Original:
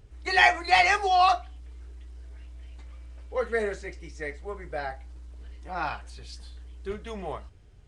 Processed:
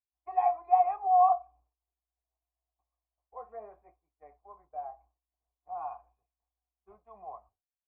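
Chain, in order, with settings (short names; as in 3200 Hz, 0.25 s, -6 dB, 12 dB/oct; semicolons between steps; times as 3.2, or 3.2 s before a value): vocal tract filter a; expander -56 dBFS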